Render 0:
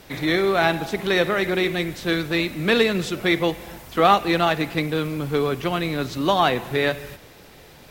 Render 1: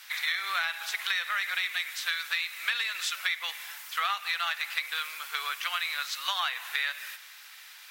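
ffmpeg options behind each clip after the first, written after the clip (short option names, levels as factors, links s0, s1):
-af "highpass=f=1300:w=0.5412,highpass=f=1300:w=1.3066,acompressor=threshold=0.0398:ratio=12,volume=1.33"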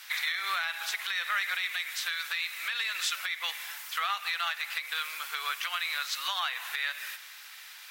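-af "alimiter=limit=0.0944:level=0:latency=1:release=157,volume=1.19"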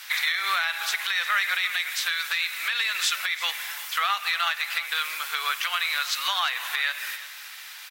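-af "aecho=1:1:347:0.158,volume=2"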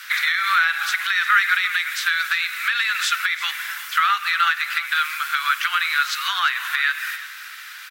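-af "highpass=f=1400:t=q:w=3.3"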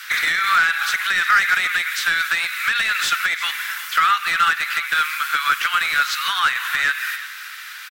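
-filter_complex "[0:a]acrossover=split=1500[s0][s1];[s1]asoftclip=type=hard:threshold=0.0944[s2];[s0][s2]amix=inputs=2:normalize=0,asplit=2[s3][s4];[s4]adelay=90,highpass=300,lowpass=3400,asoftclip=type=hard:threshold=0.119,volume=0.0562[s5];[s3][s5]amix=inputs=2:normalize=0,volume=1.33"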